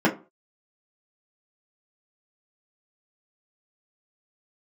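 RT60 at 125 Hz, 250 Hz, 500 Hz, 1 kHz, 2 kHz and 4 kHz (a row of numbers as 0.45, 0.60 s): 0.40, 0.35, 0.35, 0.35, 0.25, 0.20 s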